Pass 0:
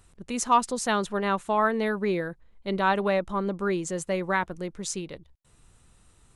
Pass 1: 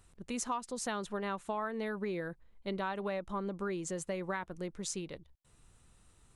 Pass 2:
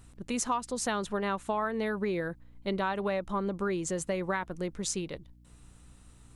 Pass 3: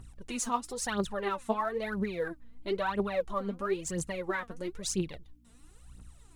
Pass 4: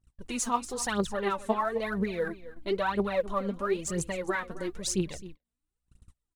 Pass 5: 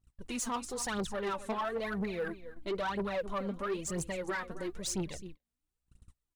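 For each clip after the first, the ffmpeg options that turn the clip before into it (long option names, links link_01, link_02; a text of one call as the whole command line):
ffmpeg -i in.wav -af "acompressor=threshold=-28dB:ratio=6,volume=-5dB" out.wav
ffmpeg -i in.wav -af "aeval=exprs='val(0)+0.000891*(sin(2*PI*60*n/s)+sin(2*PI*2*60*n/s)/2+sin(2*PI*3*60*n/s)/3+sin(2*PI*4*60*n/s)/4+sin(2*PI*5*60*n/s)/5)':channel_layout=same,volume=5.5dB" out.wav
ffmpeg -i in.wav -af "aphaser=in_gain=1:out_gain=1:delay=4.6:decay=0.74:speed=1:type=triangular,volume=-4.5dB" out.wav
ffmpeg -i in.wav -af "aecho=1:1:263:0.158,agate=range=-34dB:threshold=-45dB:ratio=16:detection=peak,volume=2.5dB" out.wav
ffmpeg -i in.wav -af "asoftclip=type=tanh:threshold=-27dB,volume=-2dB" out.wav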